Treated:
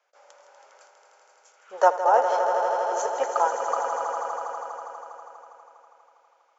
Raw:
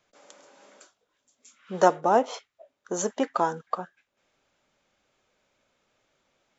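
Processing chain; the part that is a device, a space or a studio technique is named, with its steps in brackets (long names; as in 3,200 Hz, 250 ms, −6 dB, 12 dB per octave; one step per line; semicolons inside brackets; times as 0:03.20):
phone speaker on a table (loudspeaker in its box 500–6,700 Hz, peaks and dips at 530 Hz +4 dB, 860 Hz +7 dB, 1,400 Hz +4 dB, 3,800 Hz −5 dB)
parametric band 3,300 Hz −2 dB
echo that builds up and dies away 81 ms, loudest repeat 5, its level −9.5 dB
level −2 dB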